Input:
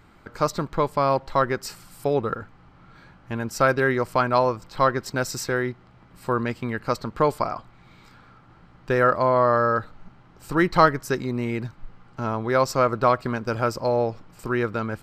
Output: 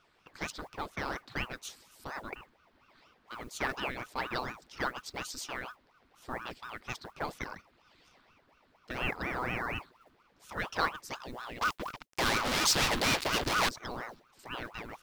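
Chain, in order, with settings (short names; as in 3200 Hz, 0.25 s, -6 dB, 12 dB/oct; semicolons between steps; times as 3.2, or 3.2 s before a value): 11.61–13.69 fuzz box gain 42 dB, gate -42 dBFS; graphic EQ 125/250/500/4000 Hz +8/-9/-8/+7 dB; modulation noise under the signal 29 dB; low shelf 130 Hz -11 dB; ring modulator with a swept carrier 750 Hz, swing 85%, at 4.2 Hz; gain -9 dB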